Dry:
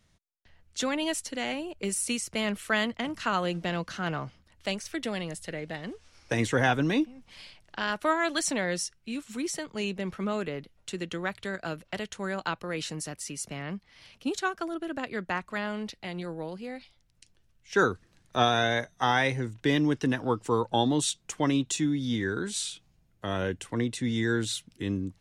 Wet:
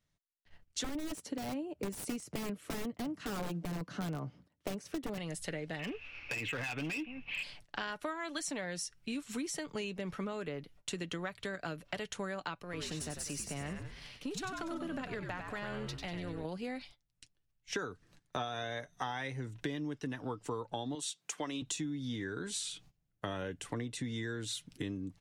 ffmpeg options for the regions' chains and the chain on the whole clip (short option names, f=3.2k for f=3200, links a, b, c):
-filter_complex "[0:a]asettb=1/sr,asplit=3[a][b][c];[a]atrim=end=0.844[d];[b]atrim=start=0.84:end=5.18,asetpts=PTS-STARTPTS,afade=t=in:d=0.004:c=qsin,afade=t=out:st=4.336:d=0.004:c=qsin,highpass=160,aeval=exprs='(mod(15.8*val(0)+1,2)-1)/15.8':c=same,tiltshelf=f=730:g=8.5[e];[c]atrim=start=5.176[f];[d][e]acrossfade=d=0.004:c1=hsin:c2=qsin[g];[g][f]acrossfade=d=0.004:c1=qsin:c2=hsin,asettb=1/sr,asplit=3[h][i][j];[h]atrim=end=5.794[k];[i]atrim=start=5.79:end=7.43,asetpts=PTS-STARTPTS,afade=t=in:d=0.004:c=qsin,afade=t=out:st=1.636:d=0.004:c=qsin,lowpass=f=2.6k:t=q:w=14,acompressor=threshold=-29dB:ratio=6:attack=3.2:release=140:knee=1:detection=peak,asoftclip=type=hard:threshold=-31.5dB[l];[j]atrim=start=7.426[m];[k][l]acrossfade=d=0.004:c1=hsin:c2=qsin[n];[n][m]acrossfade=d=0.004:c1=qsin:c2=hsin,asettb=1/sr,asplit=3[o][p][q];[o]atrim=end=12.634[r];[p]atrim=start=12.63:end=16.45,asetpts=PTS-STARTPTS,afade=t=in:d=0.004:c=qsin,afade=t=out:st=3.816:d=0.004:c=qsin,aeval=exprs='if(lt(val(0),0),0.708*val(0),val(0))':c=same,acompressor=threshold=-39dB:ratio=2.5:attack=3.2:release=140:knee=1:detection=peak,asplit=7[s][t][u][v][w][x][y];[t]adelay=96,afreqshift=-77,volume=-6dB[z];[u]adelay=192,afreqshift=-154,volume=-12.7dB[aa];[v]adelay=288,afreqshift=-231,volume=-19.5dB[ab];[w]adelay=384,afreqshift=-308,volume=-26.2dB[ac];[x]adelay=480,afreqshift=-385,volume=-33dB[ad];[y]adelay=576,afreqshift=-462,volume=-39.7dB[ae];[s][z][aa][ab][ac][ad][ae]amix=inputs=7:normalize=0,atrim=end_sample=168462[af];[q]atrim=start=16.446[ag];[r][af]acrossfade=d=0.004:c1=hsin:c2=qsin[ah];[ah][ag]acrossfade=d=0.004:c1=qsin:c2=hsin,asettb=1/sr,asplit=3[ai][aj][ak];[ai]atrim=end=20.954[al];[aj]atrim=start=20.95:end=21.62,asetpts=PTS-STARTPTS,afade=t=in:d=0.004:c=qsin,afade=t=out:st=0.666:d=0.004:c=qsin,highpass=140,lowshelf=f=400:g=-12[am];[ak]atrim=start=21.616[an];[al][am]acrossfade=d=0.004:c1=hsin:c2=qsin[ao];[ao][an]acrossfade=d=0.004:c1=qsin:c2=hsin,agate=range=-17dB:threshold=-56dB:ratio=16:detection=peak,aecho=1:1:6.9:0.3,acompressor=threshold=-37dB:ratio=12,volume=2dB"